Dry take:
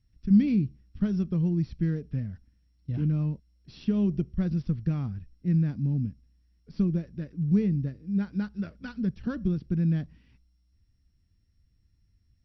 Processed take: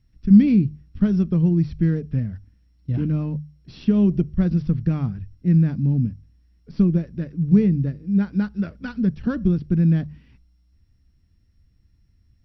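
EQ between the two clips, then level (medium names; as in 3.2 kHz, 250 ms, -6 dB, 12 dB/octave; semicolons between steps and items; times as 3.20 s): treble shelf 3.8 kHz -6.5 dB; hum notches 50/100/150 Hz; +8.0 dB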